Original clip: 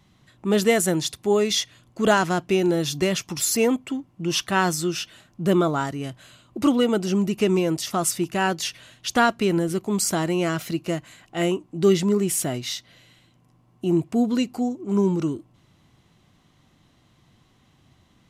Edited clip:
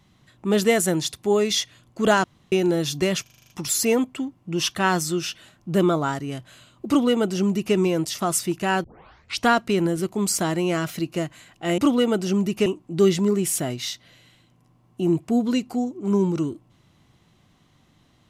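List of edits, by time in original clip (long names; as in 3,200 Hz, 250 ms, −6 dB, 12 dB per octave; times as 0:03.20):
0:02.24–0:02.52: fill with room tone
0:03.22: stutter 0.04 s, 8 plays
0:06.59–0:07.47: duplicate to 0:11.50
0:08.56: tape start 0.63 s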